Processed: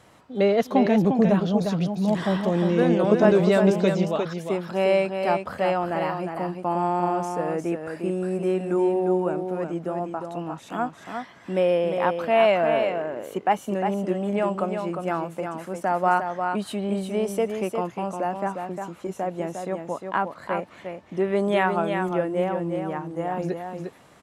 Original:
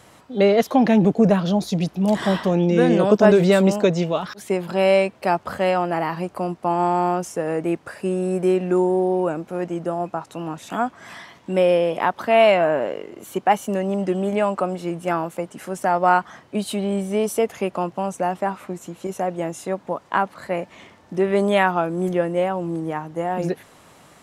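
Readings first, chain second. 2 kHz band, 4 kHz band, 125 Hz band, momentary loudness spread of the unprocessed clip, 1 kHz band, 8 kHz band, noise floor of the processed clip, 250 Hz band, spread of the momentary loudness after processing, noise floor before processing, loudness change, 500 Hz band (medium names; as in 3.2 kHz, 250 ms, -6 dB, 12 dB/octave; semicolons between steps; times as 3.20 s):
-4.0 dB, -5.0 dB, -3.0 dB, 12 LU, -3.0 dB, no reading, -49 dBFS, -3.0 dB, 12 LU, -51 dBFS, -3.5 dB, -3.0 dB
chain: treble shelf 4.8 kHz -6 dB; delay 354 ms -6 dB; trim -4 dB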